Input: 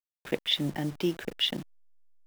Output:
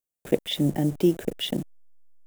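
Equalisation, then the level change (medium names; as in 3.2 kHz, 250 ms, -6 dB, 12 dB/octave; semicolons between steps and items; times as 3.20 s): high-order bell 2.2 kHz -11.5 dB 2.9 oct; +8.0 dB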